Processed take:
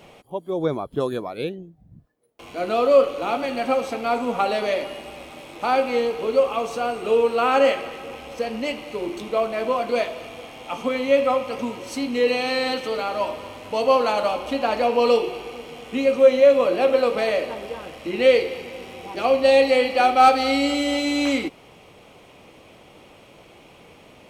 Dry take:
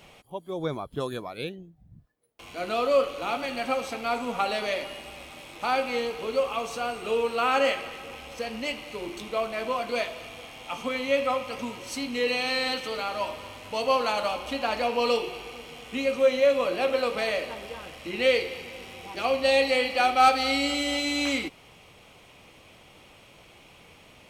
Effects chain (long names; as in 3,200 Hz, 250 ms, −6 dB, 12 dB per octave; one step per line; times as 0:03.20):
parametric band 390 Hz +8 dB 2.9 octaves